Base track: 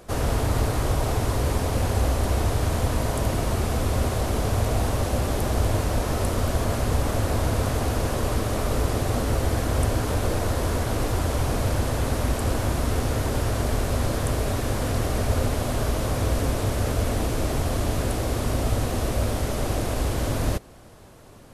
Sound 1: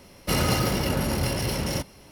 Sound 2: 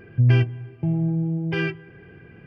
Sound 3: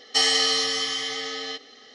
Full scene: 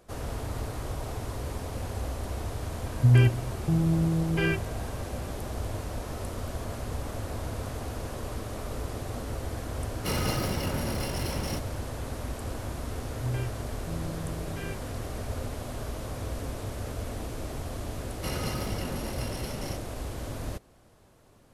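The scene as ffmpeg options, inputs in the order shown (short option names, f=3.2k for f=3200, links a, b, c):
-filter_complex "[2:a]asplit=2[a][b];[1:a]asplit=2[c][d];[0:a]volume=-11dB[e];[d]aresample=32000,aresample=44100[f];[a]atrim=end=2.46,asetpts=PTS-STARTPTS,volume=-2dB,afade=t=in:d=0.004:c=hsin,afade=t=out:st=2.456:d=0.004:c=hsin,adelay=2850[g];[c]atrim=end=2.11,asetpts=PTS-STARTPTS,volume=-6.5dB,afade=t=in:d=0.004:c=hsin,afade=t=out:st=2.106:d=0.004:c=hsin,adelay=9770[h];[b]atrim=end=2.46,asetpts=PTS-STARTPTS,volume=-15dB,afade=t=in:d=0.004:c=hsin,afade=t=out:st=2.456:d=0.004:c=hsin,adelay=13040[i];[f]atrim=end=2.11,asetpts=PTS-STARTPTS,volume=-10.5dB,afade=t=in:d=0.004:c=hsin,afade=t=out:st=2.106:d=0.004:c=hsin,adelay=17950[j];[e][g][h][i][j]amix=inputs=5:normalize=0"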